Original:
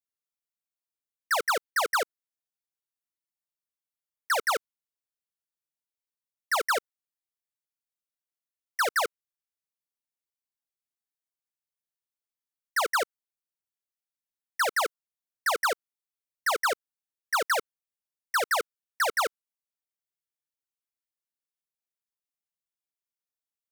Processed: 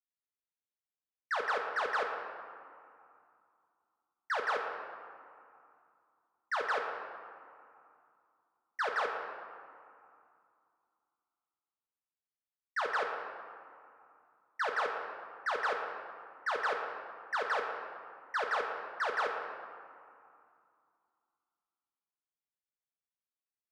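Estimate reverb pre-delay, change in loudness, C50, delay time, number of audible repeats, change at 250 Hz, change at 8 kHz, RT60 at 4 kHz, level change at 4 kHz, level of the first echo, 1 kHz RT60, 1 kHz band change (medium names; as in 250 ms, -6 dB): 5 ms, -7.5 dB, 4.0 dB, no echo, no echo, -6.0 dB, -22.5 dB, 1.2 s, -11.5 dB, no echo, 2.6 s, -5.0 dB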